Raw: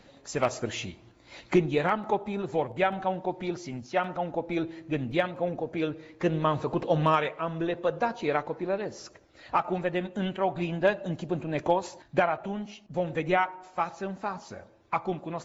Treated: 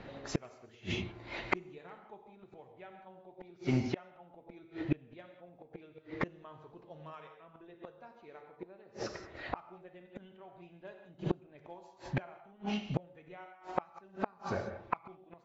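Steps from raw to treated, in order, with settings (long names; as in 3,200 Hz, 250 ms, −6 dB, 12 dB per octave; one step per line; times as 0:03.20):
reverb whose tail is shaped and stops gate 210 ms flat, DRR 4 dB
low-pass that shuts in the quiet parts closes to 2,600 Hz, open at −15.5 dBFS
gate with flip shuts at −24 dBFS, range −33 dB
level +6.5 dB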